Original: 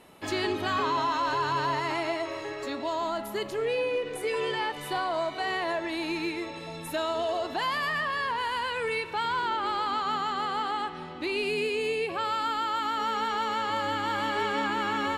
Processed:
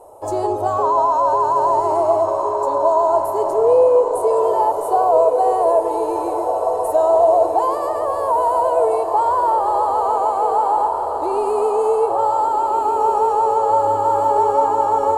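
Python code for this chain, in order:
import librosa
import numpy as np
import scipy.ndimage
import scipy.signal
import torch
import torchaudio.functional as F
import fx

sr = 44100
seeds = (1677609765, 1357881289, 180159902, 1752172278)

y = fx.curve_eq(x, sr, hz=(110.0, 170.0, 520.0, 930.0, 1900.0, 3700.0, 8100.0, 14000.0), db=(0, -25, 10, 7, -26, -23, 1, -4))
y = fx.echo_diffused(y, sr, ms=1516, feedback_pct=56, wet_db=-6)
y = F.gain(torch.from_numpy(y), 7.5).numpy()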